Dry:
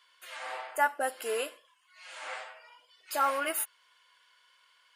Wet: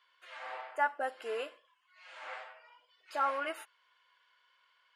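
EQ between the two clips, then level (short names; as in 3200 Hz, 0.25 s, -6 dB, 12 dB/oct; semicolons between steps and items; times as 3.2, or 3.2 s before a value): tape spacing loss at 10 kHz 22 dB; low shelf 430 Hz -7.5 dB; 0.0 dB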